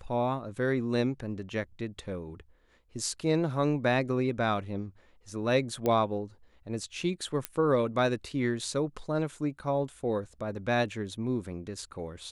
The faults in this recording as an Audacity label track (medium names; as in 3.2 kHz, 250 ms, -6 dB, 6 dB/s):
5.860000	5.860000	pop -16 dBFS
7.450000	7.450000	pop -13 dBFS